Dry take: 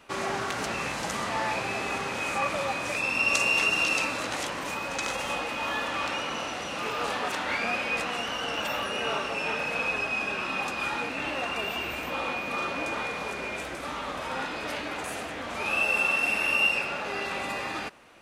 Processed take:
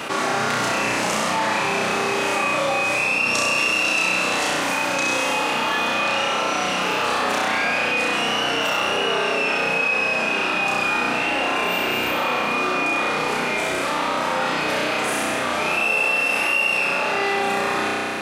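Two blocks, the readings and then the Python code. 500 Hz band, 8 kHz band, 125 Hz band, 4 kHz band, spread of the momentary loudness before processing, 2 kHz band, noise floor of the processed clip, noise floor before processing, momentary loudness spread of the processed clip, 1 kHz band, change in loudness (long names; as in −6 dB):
+9.5 dB, +9.0 dB, +7.0 dB, +8.5 dB, 10 LU, +8.0 dB, −23 dBFS, −35 dBFS, 4 LU, +9.5 dB, +8.0 dB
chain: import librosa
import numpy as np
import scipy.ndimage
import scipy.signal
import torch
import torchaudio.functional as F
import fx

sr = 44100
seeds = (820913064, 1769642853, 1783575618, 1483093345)

y = scipy.signal.sosfilt(scipy.signal.butter(2, 130.0, 'highpass', fs=sr, output='sos'), x)
y = fx.room_flutter(y, sr, wall_m=5.6, rt60_s=1.1)
y = fx.env_flatten(y, sr, amount_pct=70)
y = y * 10.0 ** (-1.5 / 20.0)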